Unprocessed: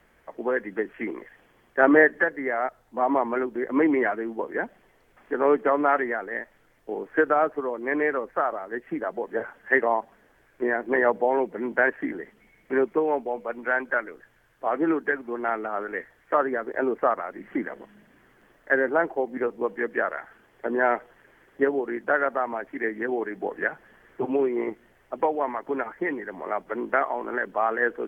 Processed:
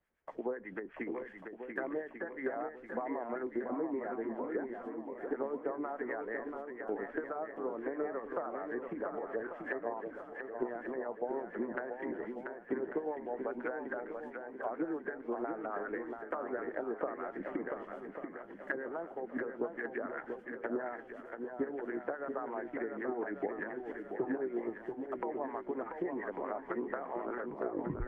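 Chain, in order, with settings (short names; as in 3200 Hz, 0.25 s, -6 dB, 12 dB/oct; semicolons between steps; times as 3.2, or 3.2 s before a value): tape stop at the end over 0.72 s; gate -54 dBFS, range -19 dB; compressor 16:1, threshold -29 dBFS, peak gain reduction 18.5 dB; treble ducked by the level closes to 960 Hz, closed at -28.5 dBFS; harmonic tremolo 8.1 Hz, depth 70%, crossover 900 Hz; swung echo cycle 1.143 s, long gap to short 1.5:1, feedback 41%, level -6 dB; gain -1 dB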